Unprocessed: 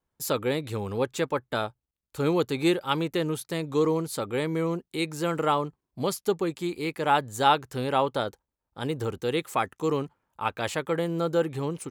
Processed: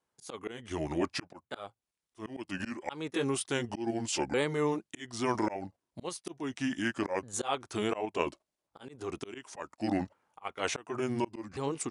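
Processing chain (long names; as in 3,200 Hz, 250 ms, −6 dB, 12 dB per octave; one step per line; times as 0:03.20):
pitch shifter swept by a sawtooth −8 semitones, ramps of 1,446 ms
high-pass filter 350 Hz 6 dB per octave
in parallel at +0.5 dB: output level in coarse steps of 14 dB
on the sum: volume swells 337 ms
linear-phase brick-wall low-pass 11,000 Hz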